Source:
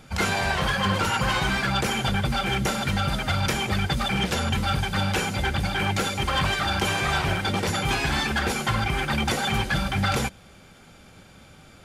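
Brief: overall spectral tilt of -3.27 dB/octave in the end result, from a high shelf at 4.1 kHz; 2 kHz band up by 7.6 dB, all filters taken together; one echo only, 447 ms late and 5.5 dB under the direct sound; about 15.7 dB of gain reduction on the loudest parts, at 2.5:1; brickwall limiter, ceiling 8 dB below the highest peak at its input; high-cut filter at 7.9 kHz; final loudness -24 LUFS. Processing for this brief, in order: low-pass 7.9 kHz; peaking EQ 2 kHz +8.5 dB; treble shelf 4.1 kHz +6.5 dB; compression 2.5:1, threshold -41 dBFS; peak limiter -28 dBFS; delay 447 ms -5.5 dB; trim +12 dB

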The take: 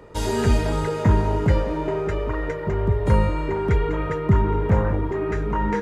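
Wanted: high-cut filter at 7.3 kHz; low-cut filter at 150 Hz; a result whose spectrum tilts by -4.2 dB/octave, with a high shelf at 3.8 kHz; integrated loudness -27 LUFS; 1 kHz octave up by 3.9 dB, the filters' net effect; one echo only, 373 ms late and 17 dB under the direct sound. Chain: high-pass 150 Hz; low-pass 7.3 kHz; peaking EQ 1 kHz +4.5 dB; treble shelf 3.8 kHz -4 dB; delay 373 ms -17 dB; trim -3 dB

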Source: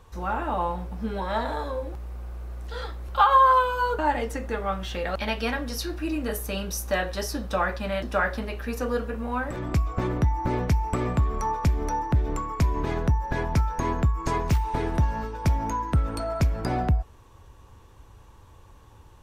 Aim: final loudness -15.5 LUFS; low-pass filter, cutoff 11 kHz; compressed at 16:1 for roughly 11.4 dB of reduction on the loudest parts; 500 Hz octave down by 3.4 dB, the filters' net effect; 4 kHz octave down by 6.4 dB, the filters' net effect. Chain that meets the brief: low-pass 11 kHz; peaking EQ 500 Hz -4 dB; peaking EQ 4 kHz -9 dB; compression 16:1, threshold -28 dBFS; trim +18.5 dB

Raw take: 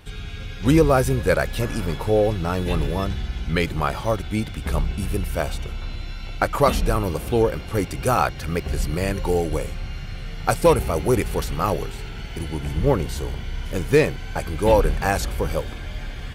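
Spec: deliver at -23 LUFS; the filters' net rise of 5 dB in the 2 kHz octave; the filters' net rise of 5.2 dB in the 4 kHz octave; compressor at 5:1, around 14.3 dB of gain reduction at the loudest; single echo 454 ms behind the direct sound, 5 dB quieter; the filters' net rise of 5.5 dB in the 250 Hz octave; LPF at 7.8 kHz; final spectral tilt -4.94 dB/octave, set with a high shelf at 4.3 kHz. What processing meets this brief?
low-pass 7.8 kHz; peaking EQ 250 Hz +7.5 dB; peaking EQ 2 kHz +5.5 dB; peaking EQ 4 kHz +6.5 dB; treble shelf 4.3 kHz -3 dB; compression 5:1, threshold -24 dBFS; delay 454 ms -5 dB; trim +5 dB

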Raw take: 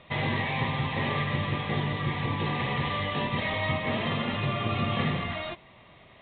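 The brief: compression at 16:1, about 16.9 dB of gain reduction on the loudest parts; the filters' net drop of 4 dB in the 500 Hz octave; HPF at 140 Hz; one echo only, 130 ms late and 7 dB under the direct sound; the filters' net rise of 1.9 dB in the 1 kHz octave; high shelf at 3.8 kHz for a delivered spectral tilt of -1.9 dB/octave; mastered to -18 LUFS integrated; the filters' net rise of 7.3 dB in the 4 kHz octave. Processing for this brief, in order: high-pass 140 Hz; peaking EQ 500 Hz -6.5 dB; peaking EQ 1 kHz +3 dB; treble shelf 3.8 kHz +6.5 dB; peaking EQ 4 kHz +6 dB; compression 16:1, threshold -41 dBFS; delay 130 ms -7 dB; trim +24.5 dB

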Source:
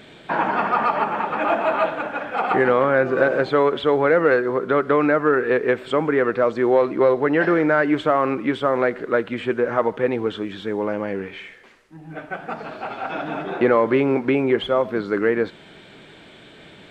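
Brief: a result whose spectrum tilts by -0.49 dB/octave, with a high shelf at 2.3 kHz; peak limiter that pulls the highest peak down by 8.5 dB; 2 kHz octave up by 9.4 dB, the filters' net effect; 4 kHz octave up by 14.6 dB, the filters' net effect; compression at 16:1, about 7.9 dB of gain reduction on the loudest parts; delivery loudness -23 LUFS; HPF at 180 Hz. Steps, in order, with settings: high-pass 180 Hz; peaking EQ 2 kHz +6.5 dB; treble shelf 2.3 kHz +9 dB; peaking EQ 4 kHz +8.5 dB; compression 16:1, threshold -17 dBFS; trim +1 dB; peak limiter -12.5 dBFS

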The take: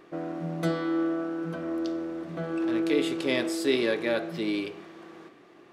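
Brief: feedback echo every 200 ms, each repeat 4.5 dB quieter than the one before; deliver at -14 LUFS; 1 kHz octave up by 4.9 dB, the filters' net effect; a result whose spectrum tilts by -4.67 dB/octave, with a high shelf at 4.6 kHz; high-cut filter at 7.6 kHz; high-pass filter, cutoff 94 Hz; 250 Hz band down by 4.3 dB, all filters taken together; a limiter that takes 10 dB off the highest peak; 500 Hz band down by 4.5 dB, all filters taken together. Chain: high-pass 94 Hz; low-pass 7.6 kHz; peaking EQ 250 Hz -3.5 dB; peaking EQ 500 Hz -7 dB; peaking EQ 1 kHz +8.5 dB; treble shelf 4.6 kHz +8 dB; peak limiter -21 dBFS; feedback delay 200 ms, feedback 60%, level -4.5 dB; trim +16 dB

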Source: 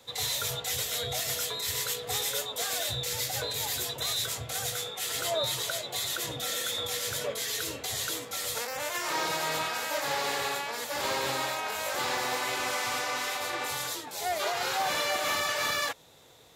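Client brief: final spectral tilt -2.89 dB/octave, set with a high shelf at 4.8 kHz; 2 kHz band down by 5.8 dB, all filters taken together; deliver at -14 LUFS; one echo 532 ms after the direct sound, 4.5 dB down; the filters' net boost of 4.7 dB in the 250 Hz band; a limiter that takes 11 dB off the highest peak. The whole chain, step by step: peaking EQ 250 Hz +6.5 dB; peaking EQ 2 kHz -6.5 dB; treble shelf 4.8 kHz -5.5 dB; peak limiter -30 dBFS; delay 532 ms -4.5 dB; trim +23 dB

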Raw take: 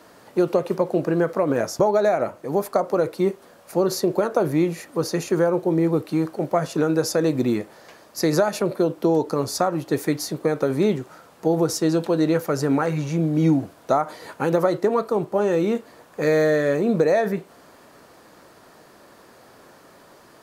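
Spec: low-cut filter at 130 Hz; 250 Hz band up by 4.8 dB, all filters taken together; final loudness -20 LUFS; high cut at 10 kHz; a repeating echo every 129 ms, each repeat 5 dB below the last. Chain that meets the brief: high-pass 130 Hz; low-pass 10 kHz; peaking EQ 250 Hz +7.5 dB; feedback delay 129 ms, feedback 56%, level -5 dB; trim -2 dB

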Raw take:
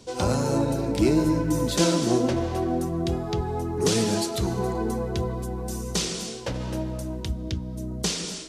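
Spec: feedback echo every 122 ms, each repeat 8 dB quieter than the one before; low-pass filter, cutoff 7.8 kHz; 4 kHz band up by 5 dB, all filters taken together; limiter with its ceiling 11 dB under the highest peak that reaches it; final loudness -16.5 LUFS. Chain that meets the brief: low-pass 7.8 kHz; peaking EQ 4 kHz +6.5 dB; peak limiter -18 dBFS; feedback delay 122 ms, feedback 40%, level -8 dB; trim +11 dB

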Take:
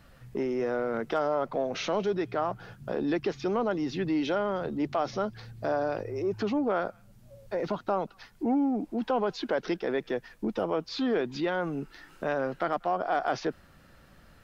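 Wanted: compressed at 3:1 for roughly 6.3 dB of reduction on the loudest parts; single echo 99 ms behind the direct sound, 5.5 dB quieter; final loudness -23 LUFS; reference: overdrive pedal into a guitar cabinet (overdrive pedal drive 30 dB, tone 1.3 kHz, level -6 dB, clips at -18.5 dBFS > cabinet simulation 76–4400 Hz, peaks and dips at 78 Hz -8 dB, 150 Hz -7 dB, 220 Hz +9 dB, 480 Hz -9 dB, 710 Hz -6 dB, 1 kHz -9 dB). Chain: compression 3:1, threshold -32 dBFS; delay 99 ms -5.5 dB; overdrive pedal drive 30 dB, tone 1.3 kHz, level -6 dB, clips at -18.5 dBFS; cabinet simulation 76–4400 Hz, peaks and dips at 78 Hz -8 dB, 150 Hz -7 dB, 220 Hz +9 dB, 480 Hz -9 dB, 710 Hz -6 dB, 1 kHz -9 dB; trim +6.5 dB

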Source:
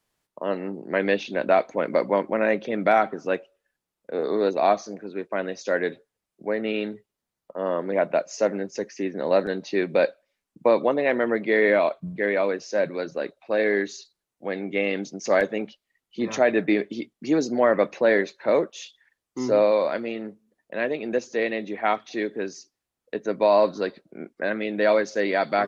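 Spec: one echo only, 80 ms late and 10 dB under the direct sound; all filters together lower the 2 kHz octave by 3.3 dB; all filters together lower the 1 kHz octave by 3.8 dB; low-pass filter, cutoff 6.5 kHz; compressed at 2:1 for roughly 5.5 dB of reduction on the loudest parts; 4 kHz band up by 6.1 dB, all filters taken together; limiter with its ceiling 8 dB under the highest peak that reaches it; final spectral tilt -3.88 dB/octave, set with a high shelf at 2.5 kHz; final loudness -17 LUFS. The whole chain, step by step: low-pass 6.5 kHz; peaking EQ 1 kHz -6 dB; peaking EQ 2 kHz -6.5 dB; treble shelf 2.5 kHz +8.5 dB; peaking EQ 4 kHz +3 dB; compression 2:1, threshold -26 dBFS; peak limiter -20.5 dBFS; delay 80 ms -10 dB; trim +15 dB

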